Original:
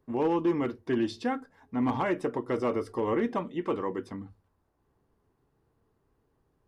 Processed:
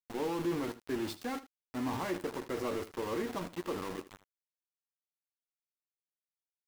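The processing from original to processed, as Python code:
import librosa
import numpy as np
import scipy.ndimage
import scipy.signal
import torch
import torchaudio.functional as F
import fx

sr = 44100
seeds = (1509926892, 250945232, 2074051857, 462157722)

y = fx.transient(x, sr, attack_db=1, sustain_db=8)
y = np.where(np.abs(y) >= 10.0 ** (-30.0 / 20.0), y, 0.0)
y = fx.room_early_taps(y, sr, ms=(11, 79), db=(-9.5, -15.5))
y = y * librosa.db_to_amplitude(-8.5)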